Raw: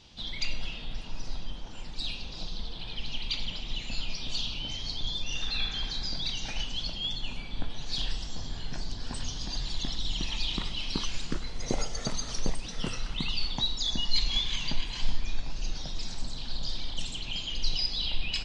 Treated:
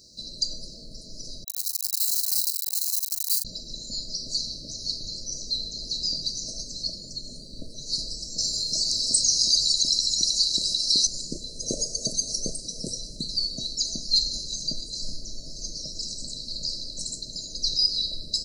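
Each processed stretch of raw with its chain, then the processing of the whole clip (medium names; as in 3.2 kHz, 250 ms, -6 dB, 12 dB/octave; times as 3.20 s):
1.44–3.45 s: one-bit comparator + Chebyshev high-pass 3 kHz + doubling 39 ms -10.5 dB
8.38–11.07 s: tilt shelf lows -7.5 dB, about 820 Hz + level flattener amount 50%
whole clip: RIAA curve recording; FFT band-reject 670–3900 Hz; bass shelf 340 Hz +8.5 dB; trim +1 dB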